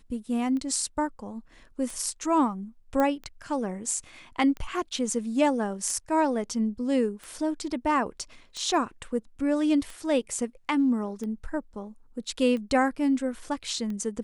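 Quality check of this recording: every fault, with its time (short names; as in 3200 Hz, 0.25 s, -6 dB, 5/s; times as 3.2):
tick 45 rpm -25 dBFS
3 pop -14 dBFS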